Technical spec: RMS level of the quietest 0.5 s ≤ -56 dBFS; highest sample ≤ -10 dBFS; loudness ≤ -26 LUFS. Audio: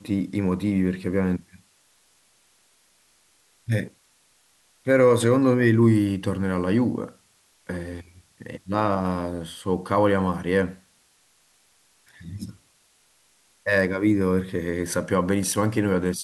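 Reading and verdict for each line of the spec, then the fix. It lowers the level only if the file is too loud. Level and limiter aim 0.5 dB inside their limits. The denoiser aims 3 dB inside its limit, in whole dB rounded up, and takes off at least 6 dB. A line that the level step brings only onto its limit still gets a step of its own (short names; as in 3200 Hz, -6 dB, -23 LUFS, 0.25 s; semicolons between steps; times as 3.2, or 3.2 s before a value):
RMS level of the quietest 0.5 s -62 dBFS: OK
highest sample -7.0 dBFS: fail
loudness -23.0 LUFS: fail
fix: gain -3.5 dB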